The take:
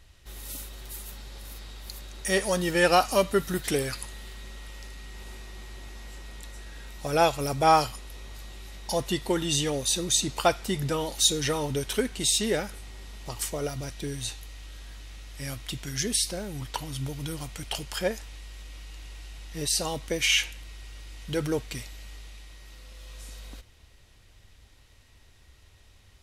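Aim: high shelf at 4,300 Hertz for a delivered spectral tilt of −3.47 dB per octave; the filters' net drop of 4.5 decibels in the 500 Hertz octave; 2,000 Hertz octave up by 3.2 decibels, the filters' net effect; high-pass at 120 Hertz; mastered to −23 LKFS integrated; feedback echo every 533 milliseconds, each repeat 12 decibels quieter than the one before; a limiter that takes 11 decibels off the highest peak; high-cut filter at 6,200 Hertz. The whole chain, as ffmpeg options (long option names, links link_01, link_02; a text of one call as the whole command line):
ffmpeg -i in.wav -af "highpass=120,lowpass=6200,equalizer=frequency=500:width_type=o:gain=-6,equalizer=frequency=2000:width_type=o:gain=5,highshelf=frequency=4300:gain=-3.5,alimiter=limit=-20.5dB:level=0:latency=1,aecho=1:1:533|1066|1599:0.251|0.0628|0.0157,volume=10.5dB" out.wav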